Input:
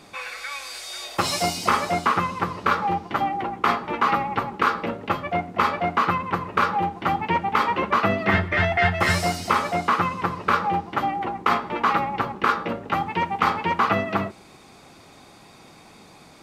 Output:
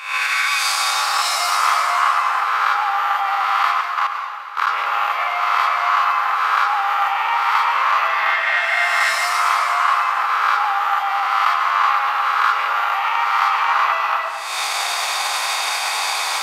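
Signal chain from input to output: reverse spectral sustain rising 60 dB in 1.57 s; recorder AGC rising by 67 dB/s; high-pass 840 Hz 24 dB/octave; 3.81–4.67 s: level held to a coarse grid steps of 18 dB; reverberation RT60 1.6 s, pre-delay 92 ms, DRR 4 dB

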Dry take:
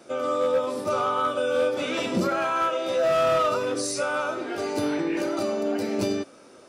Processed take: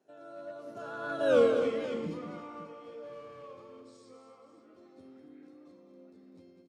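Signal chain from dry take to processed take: Doppler pass-by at 1.35 s, 42 m/s, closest 3 m; Bessel low-pass 8.9 kHz; peaking EQ 230 Hz +8.5 dB 2.8 oct; multi-tap echo 199/283/540 ms -8/-12.5/-14 dB; trim -2.5 dB

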